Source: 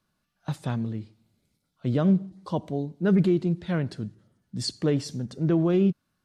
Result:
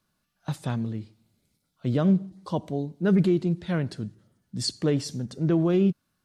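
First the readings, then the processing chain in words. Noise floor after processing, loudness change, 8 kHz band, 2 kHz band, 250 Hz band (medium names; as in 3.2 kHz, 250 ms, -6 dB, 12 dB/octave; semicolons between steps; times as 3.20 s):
-76 dBFS, 0.0 dB, +3.0 dB, +0.5 dB, 0.0 dB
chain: treble shelf 5.3 kHz +4.5 dB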